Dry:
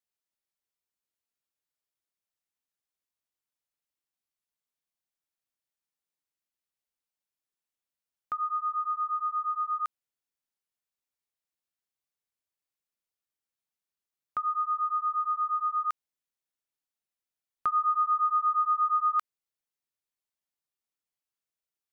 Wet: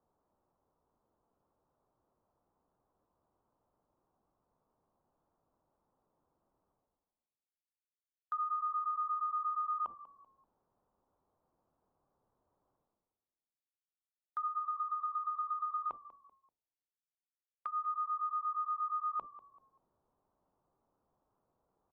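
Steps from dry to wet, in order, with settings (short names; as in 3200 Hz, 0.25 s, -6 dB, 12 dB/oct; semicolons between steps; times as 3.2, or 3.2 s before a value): steep low-pass 1100 Hz 36 dB/oct; treble ducked by the level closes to 680 Hz, closed at -32.5 dBFS; gate -47 dBFS, range -43 dB; reverse; upward compressor, threshold -45 dBFS; reverse; limiter -37.5 dBFS, peak gain reduction 11 dB; frequency-shifting echo 0.193 s, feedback 34%, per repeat -51 Hz, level -17 dB; gain +7.5 dB; AAC 96 kbps 24000 Hz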